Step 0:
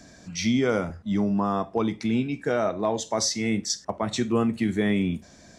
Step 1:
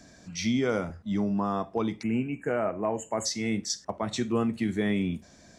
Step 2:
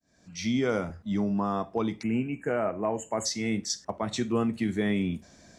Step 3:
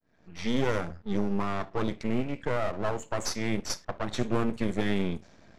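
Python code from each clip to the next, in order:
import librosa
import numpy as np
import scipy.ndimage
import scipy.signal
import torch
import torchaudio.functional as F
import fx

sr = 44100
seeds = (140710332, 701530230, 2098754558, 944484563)

y1 = fx.spec_erase(x, sr, start_s=2.03, length_s=1.23, low_hz=3100.0, high_hz=6500.0)
y1 = y1 * 10.0 ** (-3.5 / 20.0)
y2 = fx.fade_in_head(y1, sr, length_s=0.58)
y3 = np.maximum(y2, 0.0)
y3 = fx.env_lowpass(y3, sr, base_hz=2600.0, full_db=-25.0)
y3 = y3 * 10.0 ** (3.5 / 20.0)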